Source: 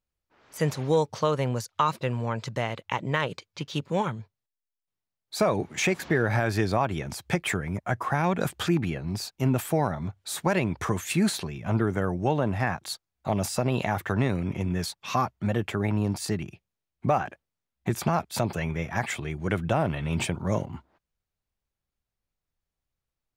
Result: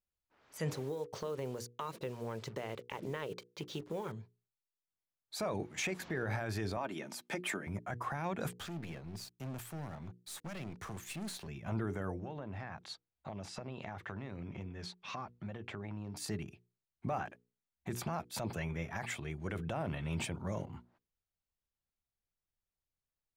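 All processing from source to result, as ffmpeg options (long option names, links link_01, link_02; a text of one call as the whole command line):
ffmpeg -i in.wav -filter_complex "[0:a]asettb=1/sr,asplit=3[link_01][link_02][link_03];[link_01]atrim=end=0.714[link_04];[link_02]atrim=start=0.71:end=4.12,asetpts=PTS-STARTPTS,afade=type=in:duration=0.004:curve=qsin,afade=type=out:start_time=3.406:duration=0.004:curve=qsin,equalizer=frequency=410:width_type=o:width=0.72:gain=11,acompressor=threshold=-25dB:ratio=12:attack=3.2:release=140:knee=1:detection=peak,acrusher=bits=7:mix=0:aa=0.5[link_05];[link_03]atrim=start=4.116[link_06];[link_04][link_05]acrossfade=duration=0.004:curve1=hsin:curve2=qsin[link_07];[link_07][link_06]acrossfade=duration=0.004:curve1=qsin:curve2=hsin,asettb=1/sr,asplit=3[link_08][link_09][link_10];[link_08]atrim=end=6.774[link_11];[link_09]atrim=start=6.77:end=7.67,asetpts=PTS-STARTPTS,afade=type=in:duration=0.004:curve=qsin,afade=type=out:start_time=0.896:duration=0.004:curve=qsin,highpass=frequency=180:width=0.5412,highpass=frequency=180:width=1.3066,aecho=1:1:3.3:0.34,atrim=end_sample=39690[link_12];[link_10]atrim=start=7.666[link_13];[link_11][link_12]acrossfade=duration=0.004:curve1=hsin:curve2=qsin[link_14];[link_14][link_13]acrossfade=duration=0.004:curve1=qsin:curve2=hsin,asettb=1/sr,asplit=3[link_15][link_16][link_17];[link_15]atrim=end=8.534[link_18];[link_16]atrim=start=8.53:end=11.48,asetpts=PTS-STARTPTS,afade=type=in:duration=0.004:curve=qsin,afade=type=out:start_time=2.946:duration=0.004:curve=qsin,acrossover=split=260|3000[link_19][link_20][link_21];[link_20]acompressor=threshold=-30dB:ratio=3:attack=3.2:release=140:knee=2.83:detection=peak[link_22];[link_19][link_22][link_21]amix=inputs=3:normalize=0,aeval=exprs='sgn(val(0))*max(abs(val(0))-0.00531,0)':channel_layout=same,aeval=exprs='(tanh(31.6*val(0)+0.35)-tanh(0.35))/31.6':channel_layout=same[link_23];[link_17]atrim=start=11.476[link_24];[link_18][link_23]acrossfade=duration=0.004:curve1=hsin:curve2=qsin[link_25];[link_25][link_24]acrossfade=duration=0.004:curve1=qsin:curve2=hsin,asettb=1/sr,asplit=3[link_26][link_27][link_28];[link_26]atrim=end=12.194[link_29];[link_27]atrim=start=12.19:end=16.17,asetpts=PTS-STARTPTS,afade=type=in:duration=0.004:curve=qsin,afade=type=out:start_time=3.976:duration=0.004:curve=qsin,lowpass=4600,acompressor=threshold=-30dB:ratio=6:attack=3.2:release=140:knee=1:detection=peak[link_30];[link_28]atrim=start=16.166[link_31];[link_29][link_30]acrossfade=duration=0.004:curve1=hsin:curve2=qsin[link_32];[link_32][link_31]acrossfade=duration=0.004:curve1=qsin:curve2=hsin,bandreject=frequency=60:width_type=h:width=6,bandreject=frequency=120:width_type=h:width=6,bandreject=frequency=180:width_type=h:width=6,bandreject=frequency=240:width_type=h:width=6,bandreject=frequency=300:width_type=h:width=6,bandreject=frequency=360:width_type=h:width=6,bandreject=frequency=420:width_type=h:width=6,bandreject=frequency=480:width_type=h:width=6,alimiter=limit=-18.5dB:level=0:latency=1:release=16,volume=-8.5dB" out.wav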